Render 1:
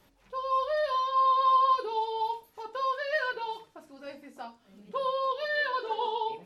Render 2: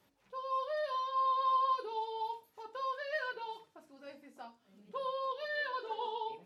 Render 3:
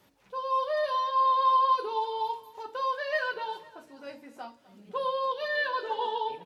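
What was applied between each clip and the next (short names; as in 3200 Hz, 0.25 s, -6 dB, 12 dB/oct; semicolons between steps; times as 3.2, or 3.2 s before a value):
HPF 89 Hz 12 dB/oct; gain -7.5 dB
feedback echo 0.252 s, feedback 42%, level -20 dB; gain +7.5 dB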